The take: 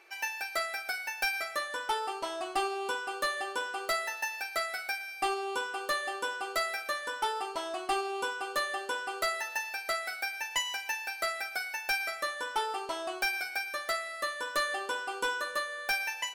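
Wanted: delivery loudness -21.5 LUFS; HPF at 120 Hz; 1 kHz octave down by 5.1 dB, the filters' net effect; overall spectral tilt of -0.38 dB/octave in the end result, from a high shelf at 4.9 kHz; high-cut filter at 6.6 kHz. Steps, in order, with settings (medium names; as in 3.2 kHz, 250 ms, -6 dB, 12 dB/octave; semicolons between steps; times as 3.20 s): high-pass 120 Hz; low-pass 6.6 kHz; peaking EQ 1 kHz -6.5 dB; treble shelf 4.9 kHz -7 dB; trim +14.5 dB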